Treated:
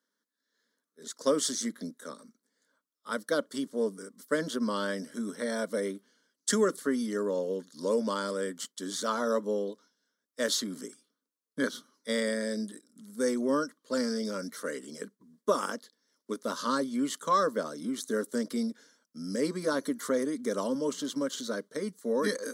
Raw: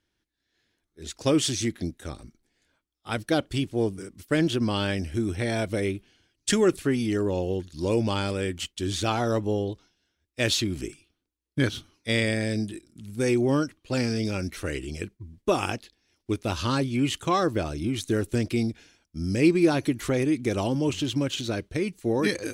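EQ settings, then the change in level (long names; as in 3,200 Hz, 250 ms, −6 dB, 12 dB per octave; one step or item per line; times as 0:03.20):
high-pass filter 230 Hz 24 dB per octave
parametric band 1,100 Hz +2 dB 0.28 octaves
phaser with its sweep stopped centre 510 Hz, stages 8
0.0 dB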